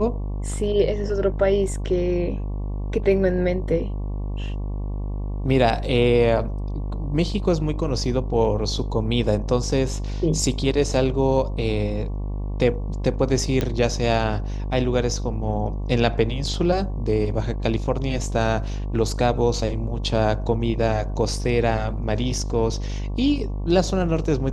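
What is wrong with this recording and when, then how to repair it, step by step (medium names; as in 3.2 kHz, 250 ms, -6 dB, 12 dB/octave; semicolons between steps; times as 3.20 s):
buzz 50 Hz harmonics 23 -27 dBFS
13.61 s: pop -10 dBFS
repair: de-click; de-hum 50 Hz, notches 23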